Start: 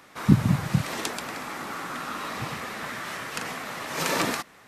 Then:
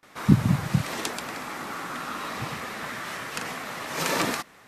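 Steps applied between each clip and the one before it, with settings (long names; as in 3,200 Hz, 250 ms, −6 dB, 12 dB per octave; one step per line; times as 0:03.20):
noise gate with hold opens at −43 dBFS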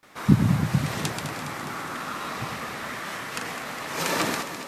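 delay that swaps between a low-pass and a high-pass 103 ms, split 1,100 Hz, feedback 81%, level −8 dB
bit-depth reduction 12 bits, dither none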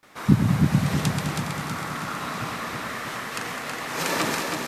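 repeating echo 322 ms, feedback 52%, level −5 dB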